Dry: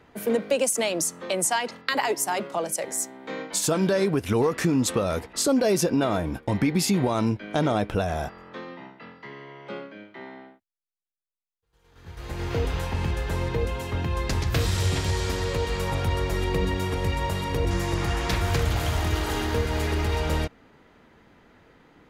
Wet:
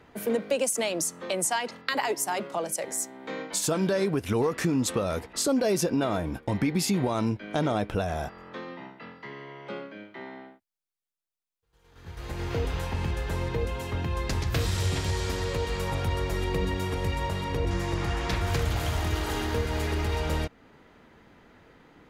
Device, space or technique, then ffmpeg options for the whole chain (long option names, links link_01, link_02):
parallel compression: -filter_complex "[0:a]asettb=1/sr,asplit=3[link_01][link_02][link_03];[link_01]atrim=end=17.284[link_04];[link_02]atrim=start=17.28:end=18.47,asetpts=PTS-STARTPTS,afade=type=in:duration=0.004:curve=qsin,afade=type=out:start_time=1.186:duration=0.004:curve=qsin,highshelf=frequency=8200:gain=-8[link_05];[link_03]atrim=start=18.466[link_06];[link_04][link_05]acrossfade=duration=0.004:curve1=hsin:curve2=qsin[link_07];[link_07][link_06]acrossfade=duration=0.004:curve1=qsin:curve2=hsin,asplit=2[link_08][link_09];[link_09]acompressor=threshold=-36dB:ratio=6,volume=-4dB[link_10];[link_08][link_10]amix=inputs=2:normalize=0,volume=-4dB"